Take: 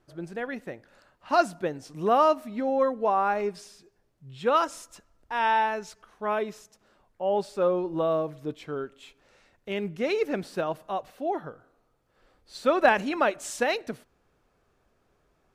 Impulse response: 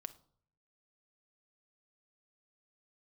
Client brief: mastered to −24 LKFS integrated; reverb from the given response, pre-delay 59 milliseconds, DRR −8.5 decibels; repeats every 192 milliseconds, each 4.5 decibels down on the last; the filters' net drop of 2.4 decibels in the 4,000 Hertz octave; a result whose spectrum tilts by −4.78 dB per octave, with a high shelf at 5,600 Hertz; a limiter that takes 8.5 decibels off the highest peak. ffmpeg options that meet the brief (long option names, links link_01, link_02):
-filter_complex "[0:a]equalizer=frequency=4000:width_type=o:gain=-6,highshelf=frequency=5600:gain=7,alimiter=limit=-17dB:level=0:latency=1,aecho=1:1:192|384|576|768|960|1152|1344|1536|1728:0.596|0.357|0.214|0.129|0.0772|0.0463|0.0278|0.0167|0.01,asplit=2[link_01][link_02];[1:a]atrim=start_sample=2205,adelay=59[link_03];[link_02][link_03]afir=irnorm=-1:irlink=0,volume=12.5dB[link_04];[link_01][link_04]amix=inputs=2:normalize=0,volume=-4.5dB"